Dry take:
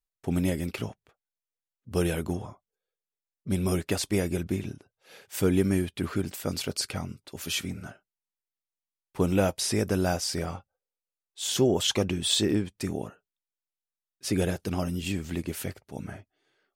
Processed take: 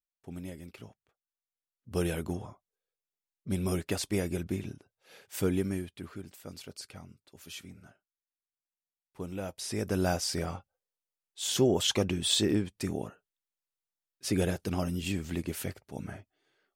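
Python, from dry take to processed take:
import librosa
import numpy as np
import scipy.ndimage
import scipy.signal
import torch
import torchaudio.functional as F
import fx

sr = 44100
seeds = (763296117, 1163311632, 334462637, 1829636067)

y = fx.gain(x, sr, db=fx.line((0.81, -15.0), (1.94, -4.0), (5.42, -4.0), (6.16, -14.0), (9.4, -14.0), (10.03, -2.0)))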